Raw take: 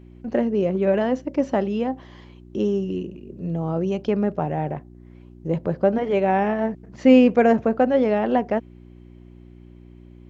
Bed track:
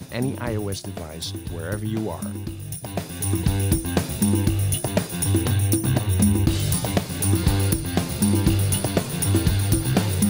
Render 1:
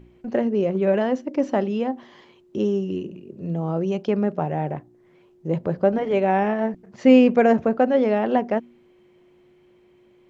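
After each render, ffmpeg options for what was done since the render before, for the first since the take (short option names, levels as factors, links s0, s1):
-af "bandreject=f=60:t=h:w=4,bandreject=f=120:t=h:w=4,bandreject=f=180:t=h:w=4,bandreject=f=240:t=h:w=4,bandreject=f=300:t=h:w=4"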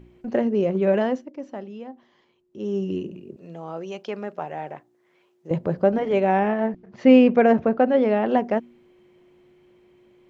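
-filter_complex "[0:a]asettb=1/sr,asplit=3[s0][s1][s2];[s0]atrim=end=3.364[s3];[s1]atrim=start=3.36:end=5.51,asetpts=PTS-STARTPTS,afade=t=in:d=0.004:c=qsin,afade=t=out:st=2.146:d=0.004:c=qsin,highpass=f=980:p=1[s4];[s2]atrim=start=5.506[s5];[s3][s4]acrossfade=d=0.004:c1=hsin:c2=qsin[s6];[s6][s5]acrossfade=d=0.004:c1=qsin:c2=hsin,asettb=1/sr,asplit=3[s7][s8][s9];[s7]atrim=end=6.394[s10];[s8]atrim=start=6.39:end=8.28,asetpts=PTS-STARTPTS,afade=t=in:d=0.004:c=qsin,afade=t=out:st=1.886:d=0.004:c=qsin,lowpass=4400[s11];[s9]atrim=start=8.276[s12];[s10][s11]acrossfade=d=0.004:c1=hsin:c2=qsin[s13];[s13][s12]acrossfade=d=0.004:c1=qsin:c2=hsin,asplit=3[s14][s15][s16];[s14]atrim=end=1.31,asetpts=PTS-STARTPTS,afade=t=out:st=1.06:d=0.25:silence=0.223872[s17];[s15]atrim=start=1.31:end=2.58,asetpts=PTS-STARTPTS,volume=0.224[s18];[s16]atrim=start=2.58,asetpts=PTS-STARTPTS,afade=t=in:d=0.25:silence=0.223872[s19];[s17][s18][s19]concat=n=3:v=0:a=1"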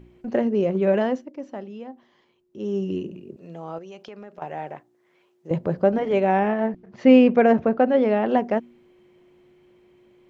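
-filter_complex "[0:a]asettb=1/sr,asplit=3[s0][s1][s2];[s0]atrim=end=3.784[s3];[s1]atrim=start=3.78:end=4.42,asetpts=PTS-STARTPTS,afade=t=in:d=0.004:c=qsin,afade=t=out:st=0.636:d=0.004:c=qsin,acompressor=threshold=0.0126:ratio=4:attack=3.2:release=140:knee=1:detection=peak[s4];[s2]atrim=start=4.416[s5];[s3][s4]acrossfade=d=0.004:c1=hsin:c2=qsin[s6];[s6][s5]acrossfade=d=0.004:c1=qsin:c2=hsin"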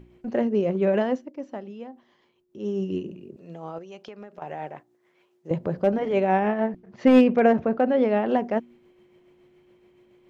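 -af "asoftclip=type=hard:threshold=0.398,tremolo=f=7.1:d=0.35"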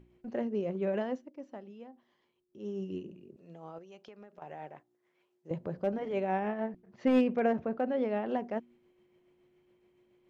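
-af "volume=0.316"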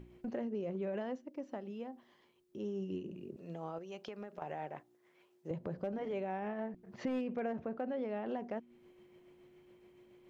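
-filter_complex "[0:a]asplit=2[s0][s1];[s1]alimiter=level_in=1.78:limit=0.0631:level=0:latency=1:release=21,volume=0.562,volume=1.06[s2];[s0][s2]amix=inputs=2:normalize=0,acompressor=threshold=0.0112:ratio=3"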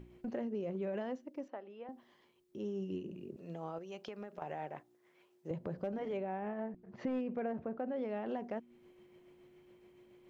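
-filter_complex "[0:a]asettb=1/sr,asplit=3[s0][s1][s2];[s0]atrim=end=1.484[s3];[s1]atrim=start=1.48:end=1.89,asetpts=PTS-STARTPTS,afade=t=in:d=0.004:c=qsin,afade=t=out:st=0.406:d=0.004:c=qsin,highpass=450,lowpass=2600[s4];[s2]atrim=start=1.886[s5];[s3][s4]acrossfade=d=0.004:c1=hsin:c2=qsin[s6];[s6][s5]acrossfade=d=0.004:c1=qsin:c2=hsin,asettb=1/sr,asplit=3[s7][s8][s9];[s7]atrim=end=6.174[s10];[s8]atrim=start=6.17:end=7.96,asetpts=PTS-STARTPTS,afade=t=in:d=0.004:c=qsin,afade=t=out:st=1.786:d=0.004:c=qsin,highshelf=f=3100:g=-11[s11];[s9]atrim=start=7.956[s12];[s10][s11]acrossfade=d=0.004:c1=hsin:c2=qsin[s13];[s13][s12]acrossfade=d=0.004:c1=qsin:c2=hsin"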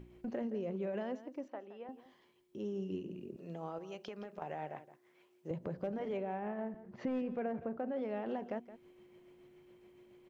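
-af "aecho=1:1:169:0.188"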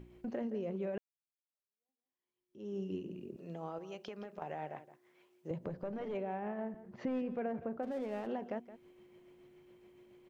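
-filter_complex "[0:a]asettb=1/sr,asplit=3[s0][s1][s2];[s0]atrim=end=5.694[s3];[s1]atrim=start=5.69:end=6.15,asetpts=PTS-STARTPTS,afade=t=in:d=0.004:c=qsin,afade=t=out:st=0.456:d=0.004:c=qsin,aeval=exprs='(tanh(31.6*val(0)+0.35)-tanh(0.35))/31.6':c=same[s4];[s2]atrim=start=6.146[s5];[s3][s4]acrossfade=d=0.004:c1=hsin:c2=qsin[s6];[s6][s5]acrossfade=d=0.004:c1=qsin:c2=hsin,asplit=3[s7][s8][s9];[s7]afade=t=out:st=7.82:d=0.02[s10];[s8]aeval=exprs='sgn(val(0))*max(abs(val(0))-0.00178,0)':c=same,afade=t=in:st=7.82:d=0.02,afade=t=out:st=8.26:d=0.02[s11];[s9]afade=t=in:st=8.26:d=0.02[s12];[s10][s11][s12]amix=inputs=3:normalize=0,asplit=2[s13][s14];[s13]atrim=end=0.98,asetpts=PTS-STARTPTS,afade=t=out:st=0.976:d=0.004:c=hsin[s15];[s14]atrim=start=0.98,asetpts=PTS-STARTPTS,afade=t=in:d=1.76:c=exp[s16];[s15][s16]concat=n=2:v=0:a=1"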